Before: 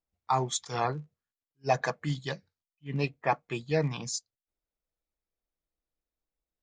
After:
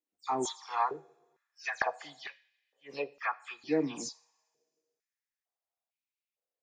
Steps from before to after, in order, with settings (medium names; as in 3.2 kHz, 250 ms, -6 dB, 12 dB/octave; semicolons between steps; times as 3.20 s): delay that grows with frequency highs early, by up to 110 ms; two-slope reverb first 0.48 s, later 1.9 s, from -18 dB, DRR 16 dB; step-sequenced high-pass 2.2 Hz 290–2400 Hz; trim -6 dB